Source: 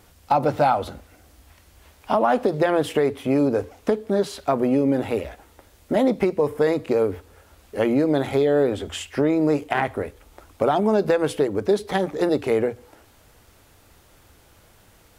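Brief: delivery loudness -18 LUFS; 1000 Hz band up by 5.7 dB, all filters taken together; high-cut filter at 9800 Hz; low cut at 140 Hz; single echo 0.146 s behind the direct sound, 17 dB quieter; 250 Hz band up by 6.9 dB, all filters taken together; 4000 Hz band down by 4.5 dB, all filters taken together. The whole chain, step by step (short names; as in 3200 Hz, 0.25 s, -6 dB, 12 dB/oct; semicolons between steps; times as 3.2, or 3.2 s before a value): HPF 140 Hz; LPF 9800 Hz; bell 250 Hz +8.5 dB; bell 1000 Hz +7.5 dB; bell 4000 Hz -6.5 dB; echo 0.146 s -17 dB; gain -1 dB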